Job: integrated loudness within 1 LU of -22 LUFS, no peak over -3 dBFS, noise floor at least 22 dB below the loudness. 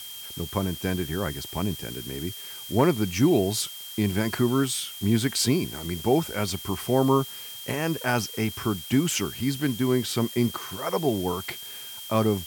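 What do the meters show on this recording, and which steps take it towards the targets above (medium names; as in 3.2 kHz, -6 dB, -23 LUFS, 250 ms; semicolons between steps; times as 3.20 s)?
steady tone 3.2 kHz; tone level -40 dBFS; noise floor -40 dBFS; noise floor target -49 dBFS; loudness -26.5 LUFS; peak level -9.5 dBFS; loudness target -22.0 LUFS
-> band-stop 3.2 kHz, Q 30; noise print and reduce 9 dB; trim +4.5 dB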